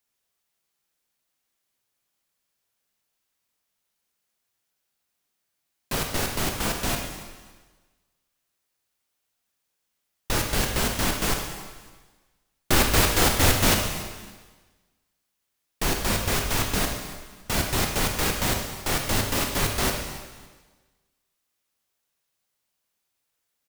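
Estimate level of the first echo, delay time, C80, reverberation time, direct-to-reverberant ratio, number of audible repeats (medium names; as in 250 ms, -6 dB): -17.5 dB, 279 ms, 6.0 dB, 1.4 s, 2.5 dB, 2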